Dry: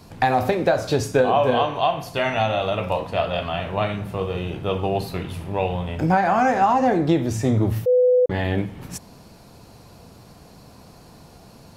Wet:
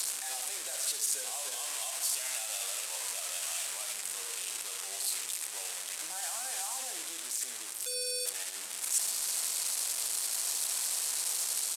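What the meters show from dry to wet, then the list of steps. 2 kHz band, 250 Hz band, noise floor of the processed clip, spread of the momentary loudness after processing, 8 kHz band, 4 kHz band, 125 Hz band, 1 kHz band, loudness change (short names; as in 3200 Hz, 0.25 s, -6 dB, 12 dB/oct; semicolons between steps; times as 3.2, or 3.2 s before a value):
-13.5 dB, -38.0 dB, -41 dBFS, 6 LU, +14.0 dB, -1.5 dB, under -40 dB, -25.0 dB, -11.0 dB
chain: delta modulation 64 kbps, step -17 dBFS; bell 8300 Hz +7 dB 0.44 oct; limiter -12.5 dBFS, peak gain reduction 8 dB; HPF 320 Hz 12 dB/oct; differentiator; echo 72 ms -10 dB; Doppler distortion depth 0.73 ms; gain -5.5 dB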